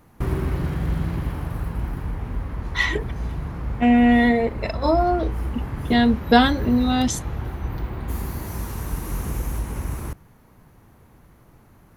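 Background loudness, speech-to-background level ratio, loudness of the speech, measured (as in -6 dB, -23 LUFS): -29.5 LUFS, 9.5 dB, -20.0 LUFS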